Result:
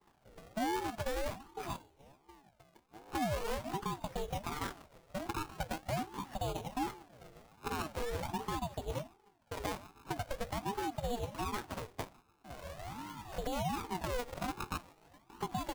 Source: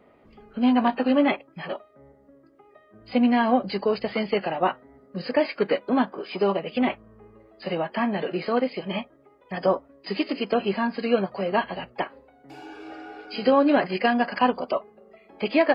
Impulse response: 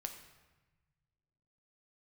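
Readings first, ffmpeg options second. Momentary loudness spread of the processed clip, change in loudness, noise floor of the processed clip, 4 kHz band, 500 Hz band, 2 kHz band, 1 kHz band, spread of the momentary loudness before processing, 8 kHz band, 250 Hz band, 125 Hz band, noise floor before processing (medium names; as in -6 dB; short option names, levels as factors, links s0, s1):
11 LU, -15.0 dB, -69 dBFS, -11.0 dB, -16.5 dB, -14.5 dB, -11.5 dB, 16 LU, no reading, -18.0 dB, -3.5 dB, -57 dBFS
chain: -filter_complex "[0:a]bandreject=f=60:t=h:w=6,bandreject=f=120:t=h:w=6,bandreject=f=180:t=h:w=6,aecho=1:1:147|294|441:0.0841|0.0353|0.0148,alimiter=limit=0.133:level=0:latency=1:release=186,equalizer=f=180:w=0.34:g=10.5,acompressor=threshold=0.00562:ratio=2,lowpass=3500,agate=range=0.0224:threshold=0.0112:ratio=3:detection=peak,asplit=2[s0][s1];[1:a]atrim=start_sample=2205[s2];[s1][s2]afir=irnorm=-1:irlink=0,volume=0.299[s3];[s0][s3]amix=inputs=2:normalize=0,acrusher=samples=23:mix=1:aa=0.000001:lfo=1:lforange=23:lforate=0.43,aeval=exprs='val(0)*sin(2*PI*430*n/s+430*0.45/1.3*sin(2*PI*1.3*n/s))':c=same,volume=0.891"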